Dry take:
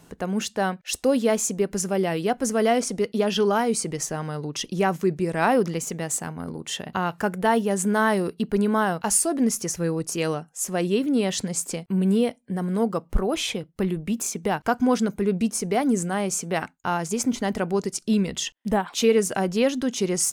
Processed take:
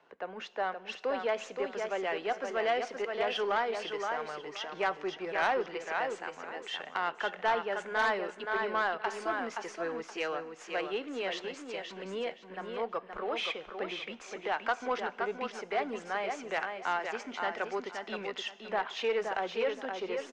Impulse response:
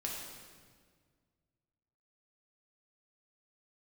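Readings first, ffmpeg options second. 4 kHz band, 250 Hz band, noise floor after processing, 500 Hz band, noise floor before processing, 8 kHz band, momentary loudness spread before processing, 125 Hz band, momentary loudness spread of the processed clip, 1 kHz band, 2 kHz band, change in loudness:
-7.5 dB, -20.5 dB, -52 dBFS, -9.0 dB, -56 dBFS, -26.0 dB, 7 LU, -27.0 dB, 9 LU, -5.5 dB, -2.5 dB, -10.0 dB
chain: -filter_complex "[0:a]aeval=exprs='if(lt(val(0),0),0.708*val(0),val(0))':c=same,lowpass=f=6200:w=0.5412,lowpass=f=6200:w=1.3066,flanger=delay=1.9:depth=1.3:regen=-89:speed=0.61:shape=triangular,lowshelf=f=110:g=-10.5,deesser=0.8,acrossover=split=400 3100:gain=0.0794 1 0.0794[s0][s1][s2];[s0][s1][s2]amix=inputs=3:normalize=0,acrossover=split=340|1300[s3][s4][s5];[s5]dynaudnorm=f=130:g=17:m=1.88[s6];[s3][s4][s6]amix=inputs=3:normalize=0,aecho=1:1:522|1044|1566:0.501|0.11|0.0243,asplit=2[s7][s8];[1:a]atrim=start_sample=2205,highshelf=f=4700:g=11.5[s9];[s8][s9]afir=irnorm=-1:irlink=0,volume=0.0841[s10];[s7][s10]amix=inputs=2:normalize=0,asoftclip=type=tanh:threshold=0.0891"

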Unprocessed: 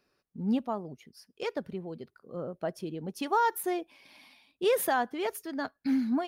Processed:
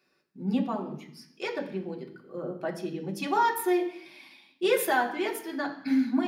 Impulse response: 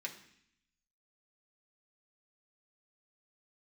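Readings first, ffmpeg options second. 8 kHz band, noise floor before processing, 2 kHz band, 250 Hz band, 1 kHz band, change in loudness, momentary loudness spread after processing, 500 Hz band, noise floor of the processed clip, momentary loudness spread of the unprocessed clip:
+1.0 dB, -79 dBFS, +5.0 dB, +3.0 dB, +2.0 dB, +2.0 dB, 16 LU, +2.0 dB, -71 dBFS, 16 LU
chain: -filter_complex "[1:a]atrim=start_sample=2205,asetrate=43218,aresample=44100[s0];[0:a][s0]afir=irnorm=-1:irlink=0,volume=1.78"

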